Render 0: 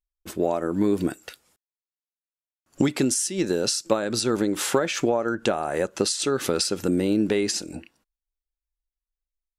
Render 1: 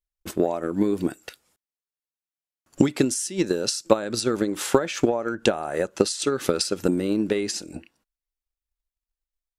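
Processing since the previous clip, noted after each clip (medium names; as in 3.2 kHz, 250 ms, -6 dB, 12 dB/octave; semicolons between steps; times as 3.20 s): transient shaper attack +8 dB, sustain 0 dB; trim -3 dB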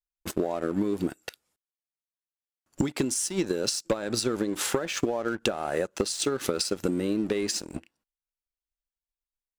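waveshaping leveller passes 2; compression, threshold -17 dBFS, peak gain reduction 9.5 dB; trim -6 dB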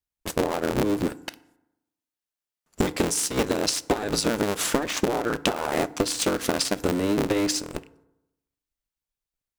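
cycle switcher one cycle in 3, inverted; FDN reverb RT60 0.89 s, low-frequency decay 1.05×, high-frequency decay 0.5×, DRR 16 dB; trim +3 dB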